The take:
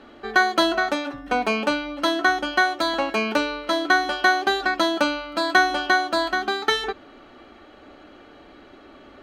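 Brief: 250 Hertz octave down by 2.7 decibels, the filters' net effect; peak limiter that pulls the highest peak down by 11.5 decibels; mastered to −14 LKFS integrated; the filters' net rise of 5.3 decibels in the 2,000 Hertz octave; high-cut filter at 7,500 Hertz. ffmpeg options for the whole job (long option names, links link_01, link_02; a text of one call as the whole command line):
ffmpeg -i in.wav -af "lowpass=7500,equalizer=frequency=250:width_type=o:gain=-4,equalizer=frequency=2000:width_type=o:gain=8,volume=8dB,alimiter=limit=-3dB:level=0:latency=1" out.wav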